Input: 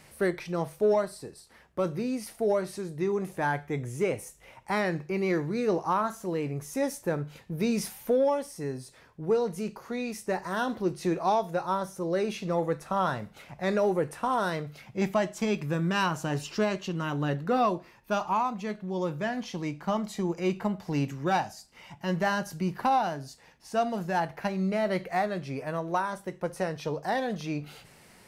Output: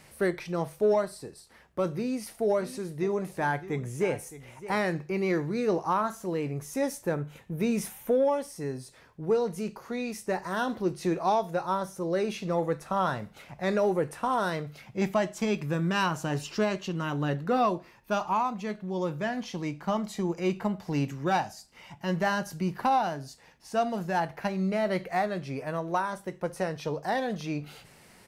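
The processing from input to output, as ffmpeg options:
-filter_complex "[0:a]asplit=3[s0][s1][s2];[s0]afade=t=out:st=2.57:d=0.02[s3];[s1]aecho=1:1:615:0.178,afade=t=in:st=2.57:d=0.02,afade=t=out:st=4.92:d=0.02[s4];[s2]afade=t=in:st=4.92:d=0.02[s5];[s3][s4][s5]amix=inputs=3:normalize=0,asettb=1/sr,asplit=3[s6][s7][s8];[s6]atrim=end=7.144[s9];[s7]atrim=start=7.14:end=8.34,asetpts=PTS-STARTPTS,afade=t=in:d=0.004:c=qsin,afade=t=out:st=1.196:d=0.004:c=qsin,equalizer=f=4700:w=2.8:g=-9[s10];[s8]atrim=start=8.336[s11];[s9][s10]acrossfade=d=0.004:c1=hsin:c2=qsin[s12];[s12][s11]acrossfade=d=0.004:c1=qsin:c2=hsin"

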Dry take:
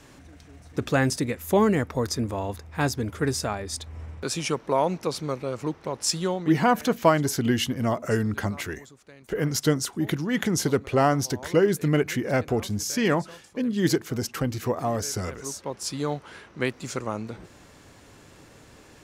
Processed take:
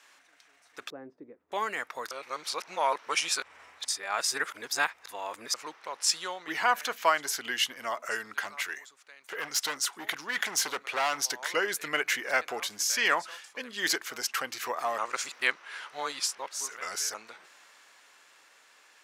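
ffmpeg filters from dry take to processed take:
-filter_complex "[0:a]asettb=1/sr,asplit=3[s0][s1][s2];[s0]atrim=end=0.904[s3];[s1]atrim=start=0.9:end=1.52,asetpts=PTS-STARTPTS,afade=t=in:d=0.004:c=qsin,afade=t=out:st=0.616:d=0.004:c=qsin,lowpass=f=340:t=q:w=1.6[s4];[s2]atrim=start=1.516[s5];[s3][s4]acrossfade=d=0.004:c1=hsin:c2=qsin[s6];[s6][s5]acrossfade=d=0.004:c1=qsin:c2=hsin,asettb=1/sr,asplit=3[s7][s8][s9];[s7]atrim=end=8.444[s10];[s8]atrim=start=8.44:end=11.18,asetpts=PTS-STARTPTS,afade=t=in:d=0.004:c=qsin,afade=t=out:st=2.736:d=0.004:c=qsin,asoftclip=type=hard:threshold=0.0794[s11];[s9]atrim=start=11.176[s12];[s10][s11]acrossfade=d=0.004:c1=hsin:c2=qsin[s13];[s13][s12]acrossfade=d=0.004:c1=qsin:c2=hsin,asplit=5[s14][s15][s16][s17][s18];[s14]atrim=end=2.112[s19];[s15]atrim=start=2.108:end=5.542,asetpts=PTS-STARTPTS,areverse[s20];[s16]atrim=start=5.538:end=14.982[s21];[s17]atrim=start=14.978:end=17.142,asetpts=PTS-STARTPTS,areverse[s22];[s18]atrim=start=17.138[s23];[s19][s20]acrossfade=d=0.004:c1=hsin:c2=hsin[s24];[s24][s21]acrossfade=d=0.004:c1=hsin:c2=hsin[s25];[s25][s22]acrossfade=d=0.004:c1=hsin:c2=hsin[s26];[s26][s23]acrossfade=d=0.004:c1=hsin:c2=hsin,dynaudnorm=f=270:g=17:m=2.82,highpass=1300,highshelf=f=3600:g=-6.5"

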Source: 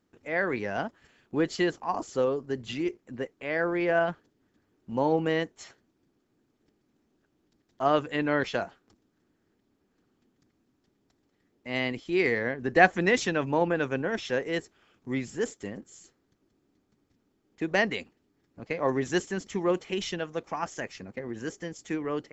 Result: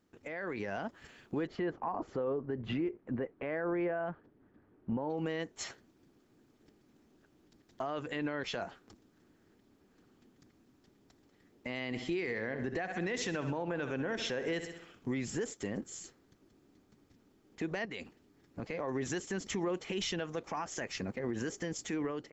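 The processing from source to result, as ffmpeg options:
-filter_complex "[0:a]asettb=1/sr,asplit=3[s0][s1][s2];[s0]atrim=end=1.474[s3];[s1]atrim=start=1.47:end=5.1,asetpts=PTS-STARTPTS,afade=t=in:d=0.004:c=qsin,afade=t=out:st=3.626:d=0.004:c=qsin,lowpass=1600[s4];[s2]atrim=start=5.096[s5];[s3][s4]acrossfade=d=0.004:c1=hsin:c2=qsin[s6];[s6][s5]acrossfade=d=0.004:c1=qsin:c2=hsin,asplit=3[s7][s8][s9];[s7]afade=t=out:st=11.92:d=0.02[s10];[s8]aecho=1:1:65|130|195|260|325:0.188|0.0923|0.0452|0.0222|0.0109,afade=t=in:st=11.92:d=0.02,afade=t=out:st=15.09:d=0.02[s11];[s9]afade=t=in:st=15.09:d=0.02[s12];[s10][s11][s12]amix=inputs=3:normalize=0,asettb=1/sr,asplit=3[s13][s14][s15];[s13]atrim=end=17.854[s16];[s14]atrim=start=17.85:end=18.64,asetpts=PTS-STARTPTS,afade=t=in:d=0.004:c=qsin,afade=t=out:st=0.786:d=0.004:c=qsin,acompressor=threshold=0.0126:ratio=6:attack=3.2:release=140:knee=1:detection=peak[s17];[s15]atrim=start=18.636[s18];[s16][s17]acrossfade=d=0.004:c1=hsin:c2=qsin[s19];[s19][s18]acrossfade=d=0.004:c1=qsin:c2=hsin,acompressor=threshold=0.0224:ratio=4,alimiter=level_in=2.51:limit=0.0631:level=0:latency=1:release=72,volume=0.398,dynaudnorm=f=110:g=11:m=1.88"

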